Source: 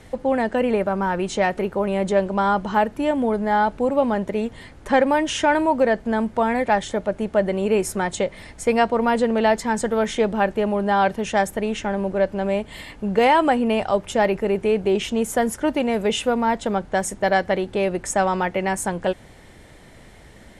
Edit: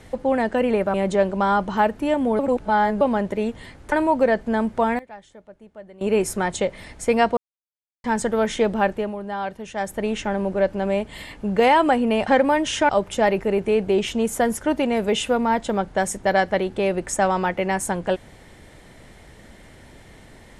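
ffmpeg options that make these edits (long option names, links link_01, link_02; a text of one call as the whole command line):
ffmpeg -i in.wav -filter_complex "[0:a]asplit=13[link_01][link_02][link_03][link_04][link_05][link_06][link_07][link_08][link_09][link_10][link_11][link_12][link_13];[link_01]atrim=end=0.942[link_14];[link_02]atrim=start=1.908:end=3.362[link_15];[link_03]atrim=start=3.358:end=3.982,asetpts=PTS-STARTPTS,areverse[link_16];[link_04]atrim=start=3.978:end=4.892[link_17];[link_05]atrim=start=5.508:end=6.58,asetpts=PTS-STARTPTS,afade=type=out:start_time=0.882:duration=0.19:curve=log:silence=0.0841395[link_18];[link_06]atrim=start=6.58:end=7.6,asetpts=PTS-STARTPTS,volume=-21.5dB[link_19];[link_07]atrim=start=7.6:end=8.96,asetpts=PTS-STARTPTS,afade=type=in:duration=0.19:curve=log:silence=0.0841395,afade=type=out:start_time=1.356:duration=0.004:curve=hsin[link_20];[link_08]atrim=start=8.96:end=9.63,asetpts=PTS-STARTPTS,volume=0[link_21];[link_09]atrim=start=9.63:end=10.75,asetpts=PTS-STARTPTS,afade=type=in:duration=0.004:curve=hsin,afade=type=out:start_time=0.81:duration=0.31:silence=0.334965[link_22];[link_10]atrim=start=10.75:end=11.34,asetpts=PTS-STARTPTS,volume=-9.5dB[link_23];[link_11]atrim=start=11.34:end=13.862,asetpts=PTS-STARTPTS,afade=type=in:duration=0.31:silence=0.334965[link_24];[link_12]atrim=start=4.888:end=5.512[link_25];[link_13]atrim=start=13.858[link_26];[link_14][link_15]acrossfade=duration=0.004:curve1=hsin:curve2=hsin[link_27];[link_27][link_16]acrossfade=duration=0.004:curve1=hsin:curve2=hsin[link_28];[link_28][link_17]acrossfade=duration=0.004:curve1=hsin:curve2=hsin[link_29];[link_18][link_19][link_20][link_21][link_22][link_23][link_24]concat=n=7:v=0:a=1[link_30];[link_29][link_30]acrossfade=duration=0.004:curve1=hsin:curve2=hsin[link_31];[link_31][link_25]acrossfade=duration=0.004:curve1=hsin:curve2=hsin[link_32];[link_32][link_26]acrossfade=duration=0.004:curve1=hsin:curve2=hsin" out.wav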